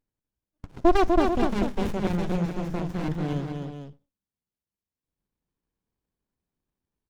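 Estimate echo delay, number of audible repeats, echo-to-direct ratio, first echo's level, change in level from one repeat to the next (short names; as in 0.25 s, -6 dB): 0.247 s, 2, -3.0 dB, -4.5 dB, no steady repeat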